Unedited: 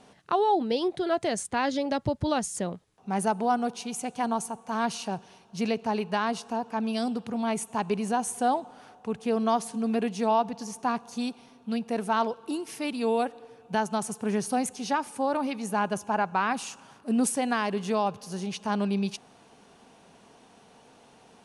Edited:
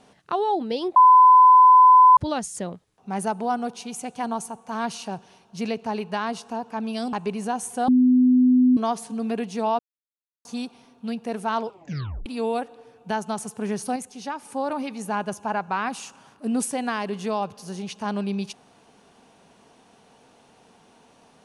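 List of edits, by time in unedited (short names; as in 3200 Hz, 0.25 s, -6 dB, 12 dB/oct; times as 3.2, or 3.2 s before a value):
0.96–2.17 bleep 1010 Hz -8.5 dBFS
7.13–7.77 cut
8.52–9.41 bleep 252 Hz -13 dBFS
10.43–11.09 mute
12.3 tape stop 0.60 s
14.6–15.09 gain -4.5 dB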